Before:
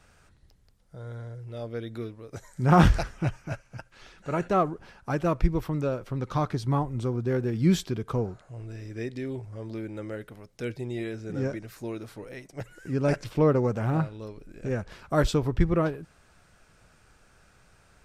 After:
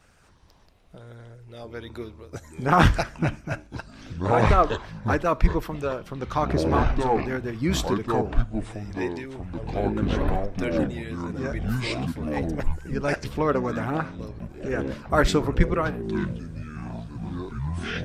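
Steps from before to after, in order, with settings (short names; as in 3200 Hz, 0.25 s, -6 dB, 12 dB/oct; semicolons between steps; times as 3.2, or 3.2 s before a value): harmonic-percussive split harmonic -11 dB; on a send at -21 dB: reverb RT60 0.35 s, pre-delay 30 ms; on the sum: echoes that change speed 0.228 s, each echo -7 st, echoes 3; dynamic EQ 1700 Hz, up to +4 dB, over -44 dBFS, Q 0.82; gain +4.5 dB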